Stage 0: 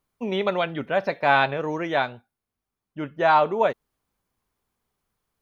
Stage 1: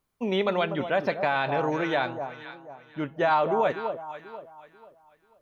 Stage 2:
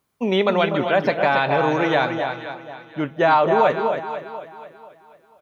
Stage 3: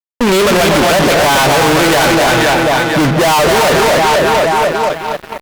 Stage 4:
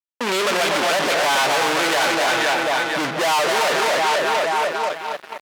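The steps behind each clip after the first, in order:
echo with dull and thin repeats by turns 0.244 s, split 1100 Hz, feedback 55%, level -10 dB; limiter -14.5 dBFS, peak gain reduction 9.5 dB
HPF 78 Hz; on a send: echo 0.275 s -7.5 dB; on the sum: gain +6.5 dB
fuzz box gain 44 dB, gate -53 dBFS; gain +4 dB
weighting filter A; gain -7.5 dB

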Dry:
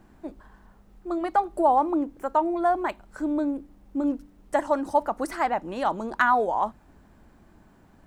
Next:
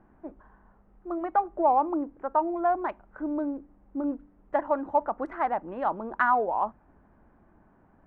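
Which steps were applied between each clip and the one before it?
Wiener smoothing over 9 samples; LPF 1600 Hz 12 dB/oct; low shelf 450 Hz -6 dB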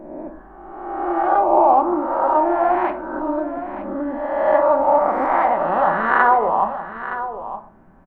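spectral swells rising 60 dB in 1.52 s; echo 0.918 s -11.5 dB; on a send at -6 dB: reverb RT60 0.45 s, pre-delay 5 ms; on the sum: gain +4.5 dB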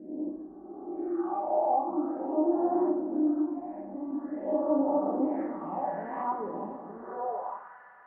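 phaser stages 6, 0.46 Hz, lowest notch 320–2700 Hz; two-slope reverb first 0.47 s, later 4.4 s, from -16 dB, DRR 1 dB; band-pass sweep 300 Hz -> 1700 Hz, 7.02–7.77; gain -1.5 dB

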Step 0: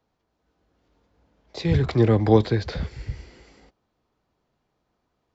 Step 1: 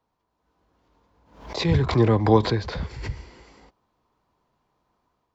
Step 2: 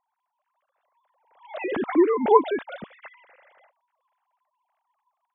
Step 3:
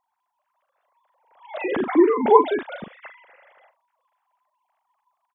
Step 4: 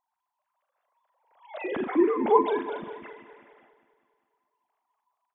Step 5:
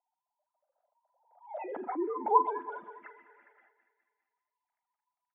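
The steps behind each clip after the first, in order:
AGC gain up to 4.5 dB; bell 1000 Hz +9.5 dB 0.42 oct; backwards sustainer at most 99 dB/s; gain -4 dB
sine-wave speech; gain -1.5 dB
doubler 41 ms -9 dB; gain +2.5 dB
regenerating reverse delay 0.101 s, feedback 71%, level -12 dB; gain -6.5 dB
spectral contrast raised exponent 1.5; band-pass sweep 600 Hz -> 2000 Hz, 0.69–4.28; Butterworth band-stop 1100 Hz, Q 6.1; gain +3 dB

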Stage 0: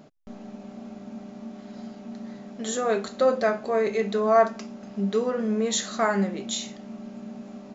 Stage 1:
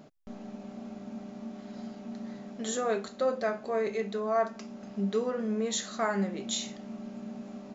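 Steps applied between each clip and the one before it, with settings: vocal rider within 4 dB 0.5 s; gain -6 dB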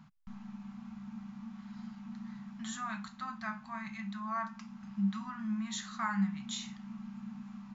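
Chebyshev band-stop 200–950 Hz, order 3; high shelf 3000 Hz -11.5 dB; gain +1 dB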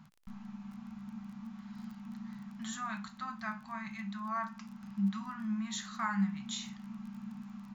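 crackle 22/s -46 dBFS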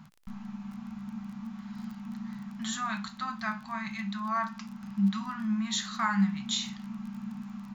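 dynamic EQ 4000 Hz, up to +5 dB, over -59 dBFS, Q 1.3; gain +5.5 dB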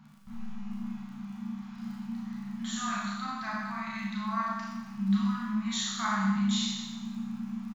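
doubler 14 ms -10.5 dB; Schroeder reverb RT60 1.1 s, combs from 27 ms, DRR -4.5 dB; gain -6 dB

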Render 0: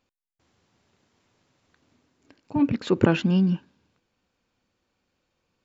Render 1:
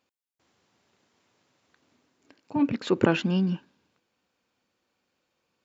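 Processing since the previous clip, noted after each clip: HPF 240 Hz 6 dB/oct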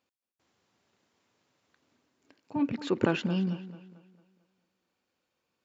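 tape echo 0.222 s, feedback 45%, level -13.5 dB, low-pass 3800 Hz; gain -4.5 dB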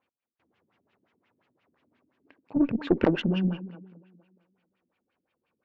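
LFO low-pass sine 5.7 Hz 230–2900 Hz; added harmonics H 4 -20 dB, 7 -31 dB, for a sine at -10 dBFS; gain +2.5 dB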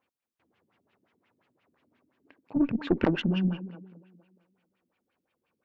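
dynamic EQ 490 Hz, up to -5 dB, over -37 dBFS, Q 1.4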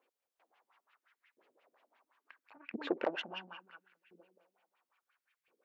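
compressor 2.5:1, threshold -31 dBFS, peak gain reduction 9 dB; LFO high-pass saw up 0.73 Hz 390–2100 Hz; gain -1.5 dB

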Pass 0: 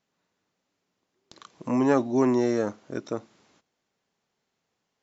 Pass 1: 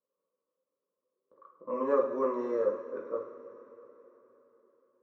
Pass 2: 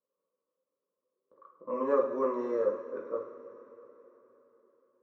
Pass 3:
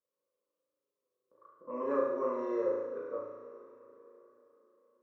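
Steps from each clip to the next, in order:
double band-pass 760 Hz, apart 1.1 oct; low-pass opened by the level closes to 740 Hz, open at -30.5 dBFS; two-slope reverb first 0.52 s, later 4.1 s, from -16 dB, DRR -1 dB
nothing audible
flutter echo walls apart 6.2 m, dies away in 0.88 s; gain -5.5 dB

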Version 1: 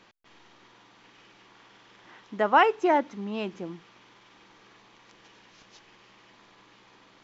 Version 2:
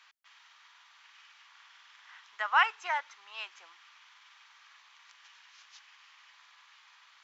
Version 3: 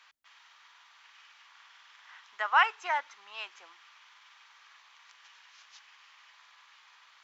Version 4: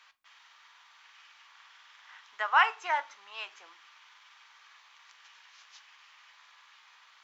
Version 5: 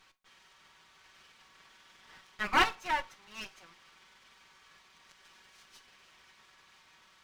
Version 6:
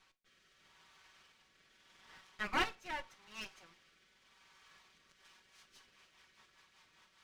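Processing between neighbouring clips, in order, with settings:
HPF 1100 Hz 24 dB/oct
low shelf 410 Hz +11.5 dB
reverb RT60 0.35 s, pre-delay 7 ms, DRR 11 dB
minimum comb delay 5.3 ms; gain -1.5 dB
rotary speaker horn 0.8 Hz, later 5 Hz, at 4.81; gain -3 dB

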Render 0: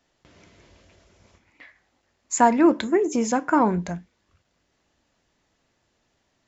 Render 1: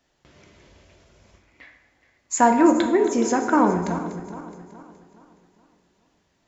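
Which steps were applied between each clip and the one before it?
regenerating reverse delay 0.21 s, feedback 64%, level -13 dB; on a send at -5.5 dB: reverb RT60 1.2 s, pre-delay 3 ms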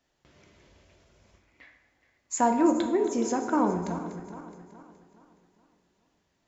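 dynamic EQ 1800 Hz, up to -6 dB, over -38 dBFS, Q 1.4; gain -6 dB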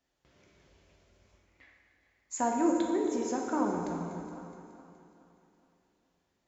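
plate-style reverb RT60 2.2 s, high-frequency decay 1×, DRR 2.5 dB; gain -6.5 dB

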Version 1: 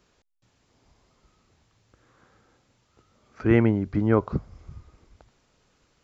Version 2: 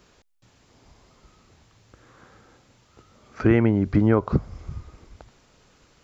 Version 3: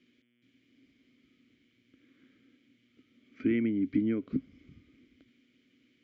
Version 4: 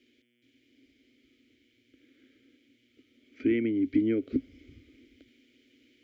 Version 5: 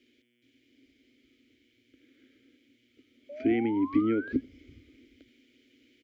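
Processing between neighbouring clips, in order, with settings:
compressor 6:1, threshold -22 dBFS, peak gain reduction 9 dB; gain +8 dB
buzz 120 Hz, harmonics 29, -62 dBFS -4 dB/oct; vowel filter i; gain +2 dB
vocal rider; fixed phaser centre 420 Hz, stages 4; gain +7 dB
painted sound rise, 3.29–4.33, 560–1700 Hz -42 dBFS; echo 86 ms -23.5 dB

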